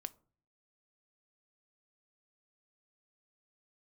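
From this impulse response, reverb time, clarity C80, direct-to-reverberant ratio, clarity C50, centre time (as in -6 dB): 0.45 s, 27.0 dB, 13.0 dB, 22.5 dB, 2 ms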